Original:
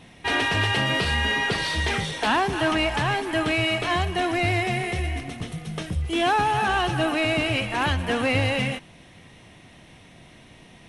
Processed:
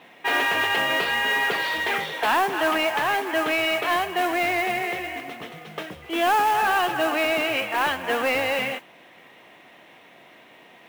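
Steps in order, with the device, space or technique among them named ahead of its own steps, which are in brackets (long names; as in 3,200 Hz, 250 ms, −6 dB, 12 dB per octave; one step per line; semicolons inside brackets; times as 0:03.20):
carbon microphone (band-pass filter 430–2,700 Hz; soft clipping −17.5 dBFS, distortion −20 dB; noise that follows the level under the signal 19 dB)
level +4 dB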